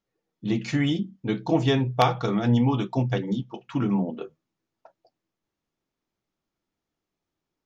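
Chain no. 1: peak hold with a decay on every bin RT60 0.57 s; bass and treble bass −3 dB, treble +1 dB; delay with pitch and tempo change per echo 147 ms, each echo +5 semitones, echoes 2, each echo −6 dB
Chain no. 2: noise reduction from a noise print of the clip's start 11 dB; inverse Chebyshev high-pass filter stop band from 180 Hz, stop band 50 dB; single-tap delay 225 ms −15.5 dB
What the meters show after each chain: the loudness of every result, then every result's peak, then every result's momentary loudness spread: −24.0, −31.0 LKFS; −6.0, −7.0 dBFS; 11, 18 LU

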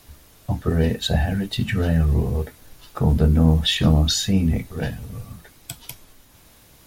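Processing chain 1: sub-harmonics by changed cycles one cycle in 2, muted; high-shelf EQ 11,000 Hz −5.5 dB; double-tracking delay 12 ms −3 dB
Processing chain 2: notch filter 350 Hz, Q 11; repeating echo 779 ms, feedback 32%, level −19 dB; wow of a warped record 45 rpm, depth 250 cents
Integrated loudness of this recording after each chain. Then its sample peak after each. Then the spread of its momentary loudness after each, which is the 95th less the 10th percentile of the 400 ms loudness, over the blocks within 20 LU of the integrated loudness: −22.0, −21.0 LKFS; −4.0, −4.5 dBFS; 19, 20 LU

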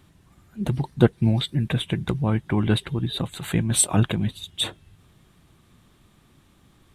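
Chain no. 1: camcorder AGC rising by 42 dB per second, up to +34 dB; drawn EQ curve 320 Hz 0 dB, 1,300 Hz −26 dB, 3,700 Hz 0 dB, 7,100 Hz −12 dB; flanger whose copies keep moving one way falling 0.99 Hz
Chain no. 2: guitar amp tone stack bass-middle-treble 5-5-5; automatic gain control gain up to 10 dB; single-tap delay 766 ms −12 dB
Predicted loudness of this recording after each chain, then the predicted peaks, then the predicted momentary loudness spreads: −26.0, −26.0 LKFS; −8.0, −3.0 dBFS; 7, 18 LU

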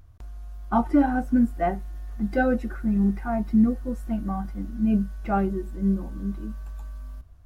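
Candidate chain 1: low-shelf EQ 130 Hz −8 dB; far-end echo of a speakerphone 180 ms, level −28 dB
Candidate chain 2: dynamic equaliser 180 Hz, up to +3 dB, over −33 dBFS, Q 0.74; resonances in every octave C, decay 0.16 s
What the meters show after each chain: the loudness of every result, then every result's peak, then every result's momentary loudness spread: −27.0, −34.0 LKFS; −11.0, −15.0 dBFS; 16, 20 LU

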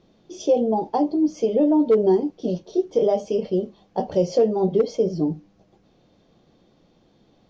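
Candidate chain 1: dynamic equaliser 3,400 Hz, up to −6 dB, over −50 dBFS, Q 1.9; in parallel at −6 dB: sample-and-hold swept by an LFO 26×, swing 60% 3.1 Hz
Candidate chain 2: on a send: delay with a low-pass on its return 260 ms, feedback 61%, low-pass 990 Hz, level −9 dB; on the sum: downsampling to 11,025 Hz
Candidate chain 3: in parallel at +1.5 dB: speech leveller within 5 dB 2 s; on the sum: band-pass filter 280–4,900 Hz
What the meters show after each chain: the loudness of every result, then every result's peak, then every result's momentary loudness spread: −19.0, −21.5, −16.0 LKFS; −6.5, −7.5, −1.5 dBFS; 9, 14, 10 LU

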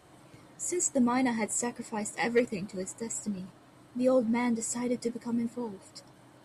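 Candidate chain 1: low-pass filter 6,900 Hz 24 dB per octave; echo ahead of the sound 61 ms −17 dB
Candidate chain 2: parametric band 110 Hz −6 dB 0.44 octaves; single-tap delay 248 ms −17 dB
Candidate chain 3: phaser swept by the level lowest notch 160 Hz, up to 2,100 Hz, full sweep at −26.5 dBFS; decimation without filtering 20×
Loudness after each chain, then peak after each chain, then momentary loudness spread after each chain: −31.5, −30.5, −32.0 LKFS; −16.0, −15.5, −16.5 dBFS; 14, 14, 15 LU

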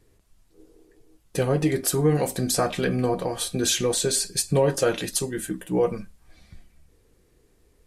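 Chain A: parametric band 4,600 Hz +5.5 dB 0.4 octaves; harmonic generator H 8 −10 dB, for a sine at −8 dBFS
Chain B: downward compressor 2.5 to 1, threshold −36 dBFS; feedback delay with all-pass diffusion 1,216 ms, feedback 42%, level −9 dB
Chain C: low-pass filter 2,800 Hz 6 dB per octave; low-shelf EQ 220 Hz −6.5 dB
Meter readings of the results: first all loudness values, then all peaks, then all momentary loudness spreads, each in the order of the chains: −20.5, −35.0, −27.0 LKFS; −6.5, −19.5, −11.5 dBFS; 6, 11, 8 LU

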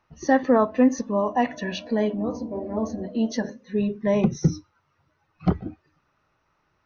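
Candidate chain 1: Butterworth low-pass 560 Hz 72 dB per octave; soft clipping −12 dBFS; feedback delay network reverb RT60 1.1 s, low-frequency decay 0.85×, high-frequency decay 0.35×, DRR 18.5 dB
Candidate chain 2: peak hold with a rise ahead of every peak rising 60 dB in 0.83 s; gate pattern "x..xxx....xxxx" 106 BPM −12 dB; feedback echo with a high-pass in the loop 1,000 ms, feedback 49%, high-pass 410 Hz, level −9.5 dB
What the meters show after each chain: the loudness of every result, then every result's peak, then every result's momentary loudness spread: −27.0, −24.0 LKFS; −12.5, −6.0 dBFS; 8, 17 LU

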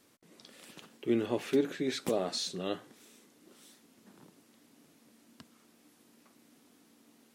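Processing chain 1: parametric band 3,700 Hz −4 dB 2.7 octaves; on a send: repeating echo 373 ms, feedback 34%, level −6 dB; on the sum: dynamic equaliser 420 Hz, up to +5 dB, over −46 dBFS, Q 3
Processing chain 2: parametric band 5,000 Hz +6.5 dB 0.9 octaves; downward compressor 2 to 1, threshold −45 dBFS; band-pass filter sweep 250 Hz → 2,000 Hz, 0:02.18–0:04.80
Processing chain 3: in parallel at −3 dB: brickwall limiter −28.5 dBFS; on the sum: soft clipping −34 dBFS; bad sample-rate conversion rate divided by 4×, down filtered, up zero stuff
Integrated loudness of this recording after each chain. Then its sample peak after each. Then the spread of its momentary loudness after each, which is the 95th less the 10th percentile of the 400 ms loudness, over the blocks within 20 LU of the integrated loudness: −30.5, −48.5, −31.0 LKFS; −13.5, −33.0, −19.5 dBFS; 15, 22, 21 LU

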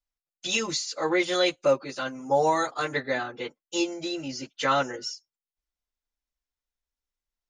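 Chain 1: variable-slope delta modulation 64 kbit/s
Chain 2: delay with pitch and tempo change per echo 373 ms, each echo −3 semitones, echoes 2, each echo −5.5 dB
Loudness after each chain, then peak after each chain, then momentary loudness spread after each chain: −27.5, −26.5 LKFS; −12.0, −10.0 dBFS; 12, 16 LU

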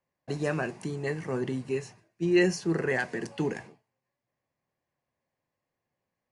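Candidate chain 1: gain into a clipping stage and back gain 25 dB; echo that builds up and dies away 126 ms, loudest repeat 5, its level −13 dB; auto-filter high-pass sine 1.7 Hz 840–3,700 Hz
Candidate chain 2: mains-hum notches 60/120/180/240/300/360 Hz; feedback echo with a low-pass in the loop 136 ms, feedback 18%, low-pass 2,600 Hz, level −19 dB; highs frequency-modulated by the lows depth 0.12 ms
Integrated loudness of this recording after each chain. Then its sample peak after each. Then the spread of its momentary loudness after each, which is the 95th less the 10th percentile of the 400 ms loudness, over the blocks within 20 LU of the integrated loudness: −36.5, −30.5 LKFS; −18.5, −13.0 dBFS; 17, 9 LU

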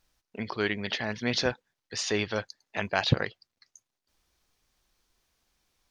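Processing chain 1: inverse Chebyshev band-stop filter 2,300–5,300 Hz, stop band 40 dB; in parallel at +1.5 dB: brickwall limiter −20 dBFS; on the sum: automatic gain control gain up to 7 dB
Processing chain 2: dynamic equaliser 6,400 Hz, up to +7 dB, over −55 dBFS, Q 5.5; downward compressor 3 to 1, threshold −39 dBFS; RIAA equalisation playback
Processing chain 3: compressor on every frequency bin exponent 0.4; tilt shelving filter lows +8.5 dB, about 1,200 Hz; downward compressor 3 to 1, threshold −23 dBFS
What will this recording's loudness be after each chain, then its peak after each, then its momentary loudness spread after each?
−22.0, −37.0, −29.5 LKFS; −2.0, −14.0, −9.0 dBFS; 13, 10, 13 LU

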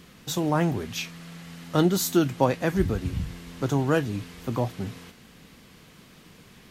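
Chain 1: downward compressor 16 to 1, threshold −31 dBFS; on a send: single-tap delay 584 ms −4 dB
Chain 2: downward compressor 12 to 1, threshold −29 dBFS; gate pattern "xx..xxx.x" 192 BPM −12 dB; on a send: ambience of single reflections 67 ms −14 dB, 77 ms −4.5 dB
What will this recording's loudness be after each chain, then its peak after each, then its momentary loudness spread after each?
−36.5, −35.5 LKFS; −17.5, −17.0 dBFS; 14, 18 LU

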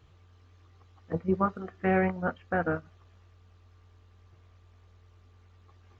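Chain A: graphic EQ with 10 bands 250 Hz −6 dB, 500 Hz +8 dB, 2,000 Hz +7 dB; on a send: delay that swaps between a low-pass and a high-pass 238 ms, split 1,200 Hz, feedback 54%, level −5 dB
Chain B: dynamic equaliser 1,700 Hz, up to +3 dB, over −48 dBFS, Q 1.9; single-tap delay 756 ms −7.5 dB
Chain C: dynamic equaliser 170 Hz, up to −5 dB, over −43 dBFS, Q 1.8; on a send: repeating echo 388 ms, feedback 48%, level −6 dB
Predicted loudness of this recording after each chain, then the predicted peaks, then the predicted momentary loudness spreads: −26.5, −30.0, −31.0 LKFS; −11.0, −13.5, −15.0 dBFS; 18, 14, 19 LU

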